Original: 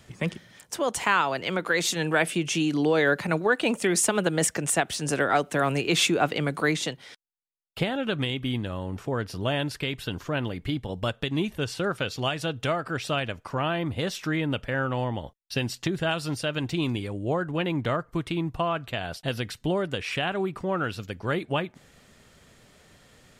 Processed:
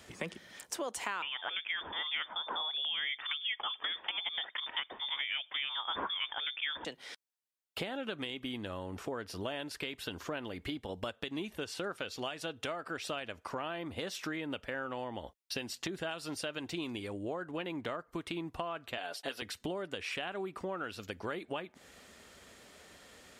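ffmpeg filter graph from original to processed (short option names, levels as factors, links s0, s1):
-filter_complex "[0:a]asettb=1/sr,asplit=3[s0][s1][s2];[s0]atrim=end=1.224[s3];[s1]atrim=start=1.22:end=6.85,asetpts=PTS-STARTPTS,afade=t=in:d=0.004:c=qsin,afade=t=out:st=5.626:d=0.004:c=qsin,highshelf=f=2700:g=11.5,lowpass=f=3100:t=q:w=0.5098,lowpass=f=3100:t=q:w=0.6013,lowpass=f=3100:t=q:w=0.9,lowpass=f=3100:t=q:w=2.563,afreqshift=-3700[s4];[s2]atrim=start=6.846[s5];[s3][s4]acrossfade=d=0.004:c1=hsin:c2=qsin[s6];[s6][s5]acrossfade=d=0.004:c1=qsin:c2=hsin,asettb=1/sr,asplit=3[s7][s8][s9];[s7]atrim=end=18.974[s10];[s8]atrim=start=18.97:end=19.42,asetpts=PTS-STARTPTS,afade=t=in:d=0.004:c=qsin,afade=t=out:st=0.446:d=0.004:c=qsin,highpass=320,aecho=1:1:7:0.64,atrim=end_sample=19845[s11];[s9]atrim=start=19.416[s12];[s10][s11]acrossfade=d=0.004:c1=hsin:c2=qsin[s13];[s13][s12]acrossfade=d=0.004:c1=qsin:c2=hsin,highpass=65,equalizer=f=130:w=1.5:g=-14.5,acompressor=threshold=0.0126:ratio=4,volume=1.12"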